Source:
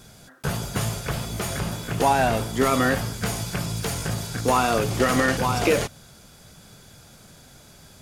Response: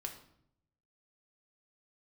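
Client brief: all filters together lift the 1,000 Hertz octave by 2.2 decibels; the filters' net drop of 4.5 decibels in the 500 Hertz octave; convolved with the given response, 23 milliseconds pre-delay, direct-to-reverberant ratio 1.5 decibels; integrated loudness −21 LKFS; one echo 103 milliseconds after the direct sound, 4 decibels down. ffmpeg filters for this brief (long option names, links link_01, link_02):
-filter_complex "[0:a]equalizer=frequency=500:width_type=o:gain=-7.5,equalizer=frequency=1000:width_type=o:gain=5.5,aecho=1:1:103:0.631,asplit=2[link_01][link_02];[1:a]atrim=start_sample=2205,adelay=23[link_03];[link_02][link_03]afir=irnorm=-1:irlink=0,volume=0dB[link_04];[link_01][link_04]amix=inputs=2:normalize=0,volume=-1dB"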